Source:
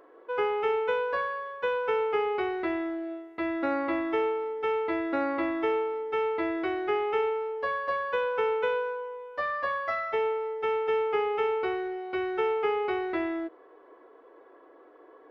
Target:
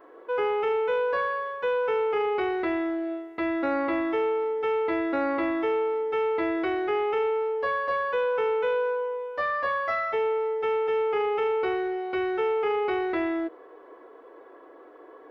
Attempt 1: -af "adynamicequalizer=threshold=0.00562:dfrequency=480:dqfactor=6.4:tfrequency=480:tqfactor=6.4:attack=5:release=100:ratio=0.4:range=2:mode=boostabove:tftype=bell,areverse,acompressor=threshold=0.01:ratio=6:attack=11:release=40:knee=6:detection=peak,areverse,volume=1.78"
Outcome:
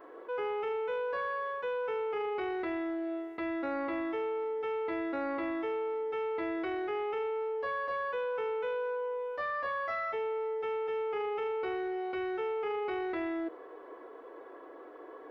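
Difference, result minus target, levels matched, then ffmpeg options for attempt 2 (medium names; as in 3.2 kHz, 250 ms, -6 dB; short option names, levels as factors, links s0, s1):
compression: peak gain reduction +9 dB
-af "adynamicequalizer=threshold=0.00562:dfrequency=480:dqfactor=6.4:tfrequency=480:tqfactor=6.4:attack=5:release=100:ratio=0.4:range=2:mode=boostabove:tftype=bell,areverse,acompressor=threshold=0.0335:ratio=6:attack=11:release=40:knee=6:detection=peak,areverse,volume=1.78"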